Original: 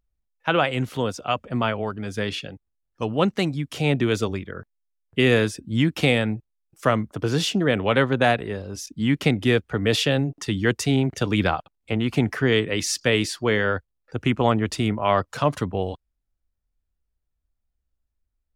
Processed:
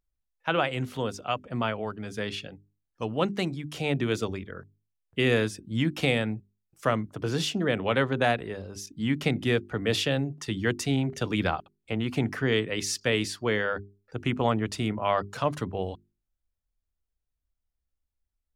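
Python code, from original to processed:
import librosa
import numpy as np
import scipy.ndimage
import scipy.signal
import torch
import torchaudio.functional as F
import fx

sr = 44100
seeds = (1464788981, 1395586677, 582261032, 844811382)

y = fx.hum_notches(x, sr, base_hz=50, count=8)
y = y * librosa.db_to_amplitude(-5.0)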